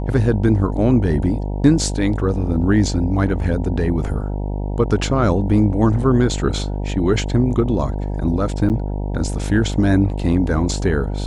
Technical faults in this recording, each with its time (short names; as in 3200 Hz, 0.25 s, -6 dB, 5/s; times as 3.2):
buzz 50 Hz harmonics 19 -23 dBFS
8.69–8.7 gap 8.8 ms